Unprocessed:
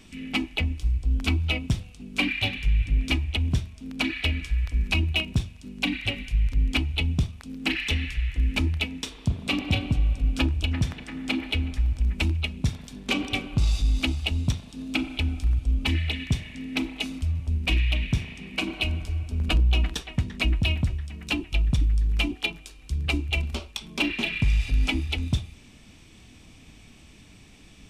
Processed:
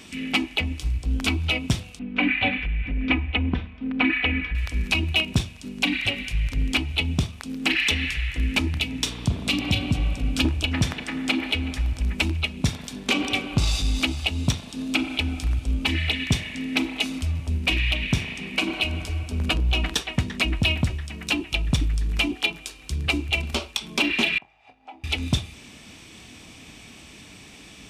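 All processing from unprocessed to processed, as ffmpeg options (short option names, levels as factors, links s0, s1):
-filter_complex "[0:a]asettb=1/sr,asplit=3[s0][s1][s2];[s0]atrim=end=1.994[s3];[s1]atrim=start=1.99:end=4.55,asetpts=PTS-STARTPTS,afade=t=in:d=0.004:c=qsin,afade=t=out:st=2.556:d=0.004:c=qsin,aecho=1:1:4:0.6,atrim=end_sample=112896,acompressor=threshold=0.1:ratio=6:attack=3.2:release=140:knee=1:detection=peak,lowpass=f=2600:w=0.5412,lowpass=f=2600:w=1.3066[s4];[s2]atrim=start=4.546[s5];[s3][s4]acrossfade=d=0.004:c1=hsin:c2=qsin[s6];[s6][s5]acrossfade=d=0.004:c1=qsin:c2=hsin,asettb=1/sr,asplit=3[s7][s8][s9];[s7]atrim=end=8.744[s10];[s8]atrim=start=8.74:end=10.45,asetpts=PTS-STARTPTS,afade=t=in:d=0.004:c=qsin,afade=t=out:st=1.706:d=0.004:c=qsin,aeval=exprs='val(0)+0.0158*(sin(2*PI*60*n/s)+sin(2*PI*2*60*n/s)/2+sin(2*PI*3*60*n/s)/3+sin(2*PI*4*60*n/s)/4+sin(2*PI*5*60*n/s)/5)':c=same,acrossover=split=260|3000[s11][s12][s13];[s12]acompressor=threshold=0.0158:ratio=6:attack=3.2:release=140:knee=2.83:detection=peak[s14];[s11][s14][s13]amix=inputs=3:normalize=0[s15];[s9]atrim=start=10.446[s16];[s10][s15]acrossfade=d=0.004:c1=hsin:c2=qsin[s17];[s17][s16]acrossfade=d=0.004:c1=qsin:c2=hsin,asettb=1/sr,asplit=3[s18][s19][s20];[s18]atrim=end=24.384[s21];[s19]atrim=start=24.38:end=25.04,asetpts=PTS-STARTPTS,afade=t=in:d=0.004:c=qsin,afade=t=out:st=0.656:d=0.004:c=qsin,acompressor=threshold=0.0355:ratio=4:attack=3.2:release=140:knee=1:detection=peak,bandpass=f=780:t=q:w=6.2,asplit=2[s22][s23];[s23]adelay=27,volume=0.282[s24];[s22][s24]amix=inputs=2:normalize=0,atrim=end_sample=29106[s25];[s20]atrim=start=25.036[s26];[s21][s25]acrossfade=d=0.004:c1=hsin:c2=qsin[s27];[s27][s26]acrossfade=d=0.004:c1=qsin:c2=hsin,highpass=46,lowshelf=f=200:g=-9.5,alimiter=limit=0.119:level=0:latency=1:release=180,volume=2.82"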